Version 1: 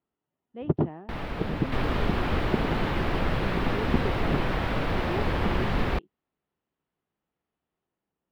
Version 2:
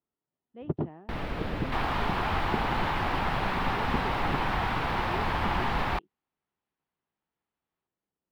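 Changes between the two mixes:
speech -6.0 dB; second sound: add resonant low shelf 630 Hz -9 dB, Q 3

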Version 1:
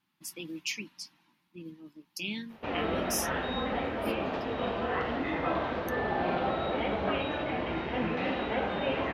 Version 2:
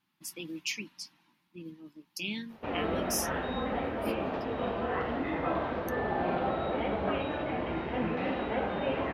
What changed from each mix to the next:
background: add treble shelf 2.6 kHz -8.5 dB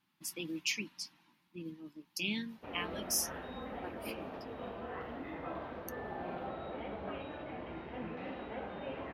background -11.0 dB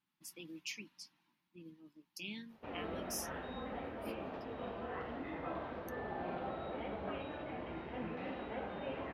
speech -9.5 dB

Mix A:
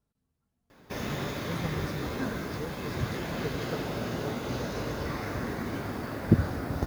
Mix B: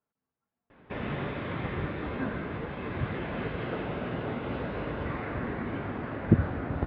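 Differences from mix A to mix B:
speech: add band-pass filter 1.2 kHz, Q 0.54; master: add steep low-pass 3.1 kHz 36 dB/octave

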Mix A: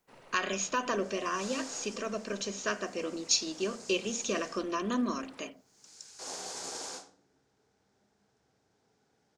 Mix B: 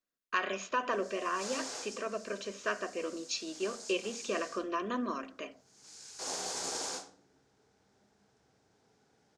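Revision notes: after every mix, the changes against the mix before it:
speech: add tone controls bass -11 dB, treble -14 dB; first sound: muted; second sound +3.0 dB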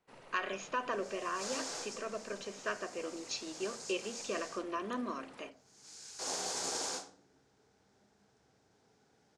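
speech -3.5 dB; first sound: unmuted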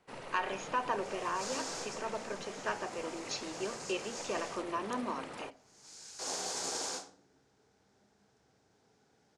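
speech: remove Butterworth band-stop 850 Hz, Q 2.9; first sound +10.0 dB

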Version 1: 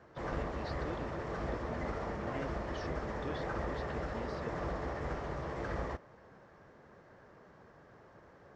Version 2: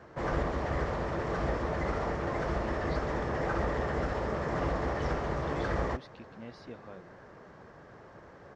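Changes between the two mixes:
speech: entry +2.25 s; background +6.5 dB

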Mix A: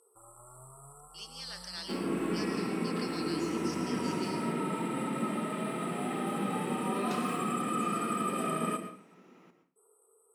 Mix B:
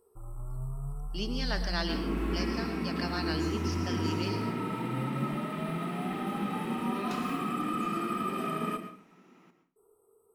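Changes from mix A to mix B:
speech: remove differentiator; first sound: remove frequency weighting ITU-R 468; master: add peaking EQ 510 Hz -6.5 dB 0.58 oct

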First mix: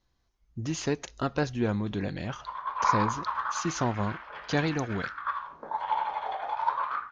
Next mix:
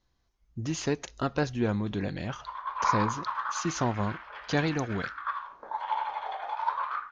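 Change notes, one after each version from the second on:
background: add high-pass 660 Hz 6 dB/octave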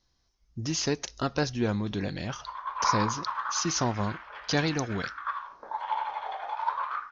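speech: add resonant low-pass 5.5 kHz, resonance Q 3.6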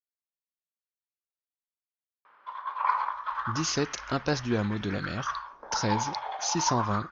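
speech: entry +2.90 s

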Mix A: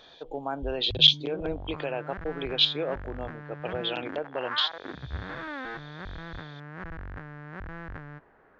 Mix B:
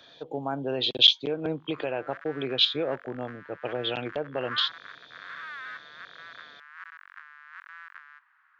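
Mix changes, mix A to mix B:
background: add steep high-pass 1.1 kHz 48 dB/octave; master: add bass shelf 190 Hz +11.5 dB

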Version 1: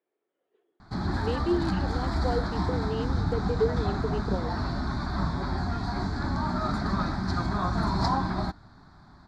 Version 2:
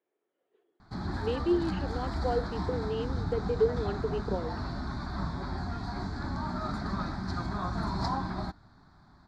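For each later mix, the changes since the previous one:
background -5.5 dB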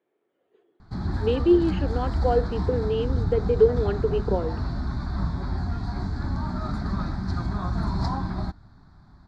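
speech +6.5 dB; master: add bass shelf 180 Hz +10.5 dB

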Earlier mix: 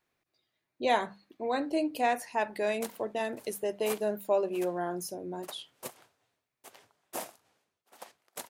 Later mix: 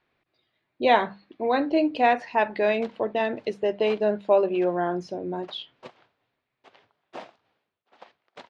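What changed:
speech +7.5 dB; master: add low-pass 4 kHz 24 dB/octave

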